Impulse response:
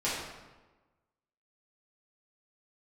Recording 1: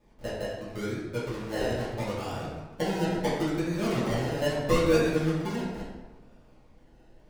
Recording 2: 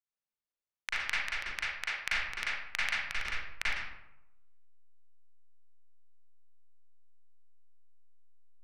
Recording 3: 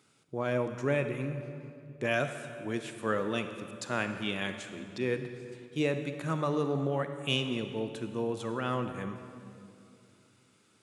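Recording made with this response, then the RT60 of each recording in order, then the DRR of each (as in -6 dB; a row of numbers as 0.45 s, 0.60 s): 1; 1.2 s, 0.90 s, 2.6 s; -10.5 dB, -10.0 dB, 7.5 dB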